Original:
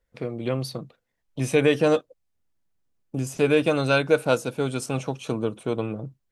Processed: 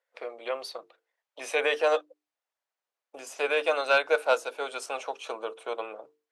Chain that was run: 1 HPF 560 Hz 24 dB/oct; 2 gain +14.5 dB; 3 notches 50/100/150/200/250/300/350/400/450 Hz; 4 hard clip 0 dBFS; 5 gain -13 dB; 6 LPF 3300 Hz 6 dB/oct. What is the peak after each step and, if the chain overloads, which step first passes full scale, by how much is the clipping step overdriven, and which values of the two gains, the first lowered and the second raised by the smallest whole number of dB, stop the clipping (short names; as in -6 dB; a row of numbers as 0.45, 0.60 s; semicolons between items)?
-11.0, +3.5, +3.5, 0.0, -13.0, -13.0 dBFS; step 2, 3.5 dB; step 2 +10.5 dB, step 5 -9 dB